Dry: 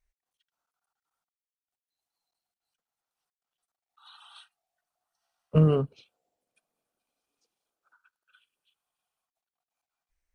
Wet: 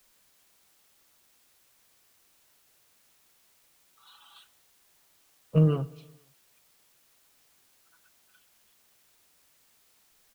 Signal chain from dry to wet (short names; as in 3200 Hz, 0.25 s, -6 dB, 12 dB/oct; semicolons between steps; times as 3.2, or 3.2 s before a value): comb 6.1 ms, depth 70%; requantised 10-bit, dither triangular; feedback echo 0.119 s, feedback 60%, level -23 dB; gain -5 dB